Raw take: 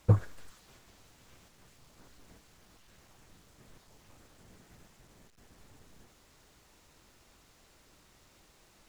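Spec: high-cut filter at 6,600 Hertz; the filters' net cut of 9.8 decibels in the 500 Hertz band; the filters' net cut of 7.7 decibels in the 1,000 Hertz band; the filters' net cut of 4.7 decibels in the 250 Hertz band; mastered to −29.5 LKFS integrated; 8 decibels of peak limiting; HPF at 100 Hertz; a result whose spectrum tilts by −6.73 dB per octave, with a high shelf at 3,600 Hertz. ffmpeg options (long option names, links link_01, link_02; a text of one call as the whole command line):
ffmpeg -i in.wav -af "highpass=100,lowpass=6600,equalizer=frequency=250:width_type=o:gain=-5.5,equalizer=frequency=500:width_type=o:gain=-8,equalizer=frequency=1000:width_type=o:gain=-6.5,highshelf=frequency=3600:gain=-4.5,volume=13.5dB,alimiter=limit=-10dB:level=0:latency=1" out.wav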